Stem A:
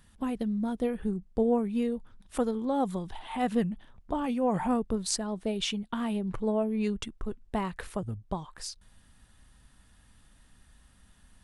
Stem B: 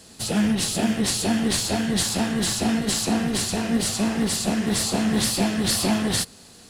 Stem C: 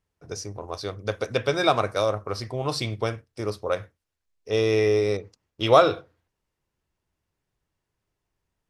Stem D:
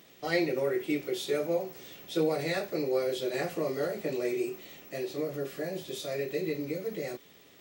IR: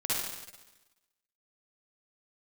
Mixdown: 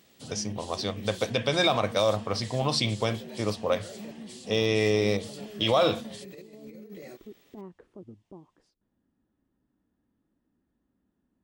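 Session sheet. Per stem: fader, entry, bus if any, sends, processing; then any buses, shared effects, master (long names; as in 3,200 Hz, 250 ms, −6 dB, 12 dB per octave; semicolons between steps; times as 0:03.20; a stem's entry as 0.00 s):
−5.0 dB, 0.00 s, bus B, no send, resonant band-pass 320 Hz, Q 2.8
−19.0 dB, 0.00 s, bus A, no send, downward compressor 1.5 to 1, threshold −27 dBFS, peak gain reduction 4 dB
+3.0 dB, 0.00 s, bus A, no send, no processing
−10.0 dB, 0.00 s, bus B, no send, no processing
bus A: 0.0 dB, loudspeaker in its box 100–9,400 Hz, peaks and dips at 210 Hz +4 dB, 390 Hz −9 dB, 1,400 Hz −8 dB, 3,200 Hz +6 dB; brickwall limiter −13 dBFS, peak gain reduction 11 dB
bus B: 0.0 dB, compressor whose output falls as the input rises −43 dBFS, ratio −0.5; brickwall limiter −35 dBFS, peak gain reduction 6.5 dB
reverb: not used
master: no processing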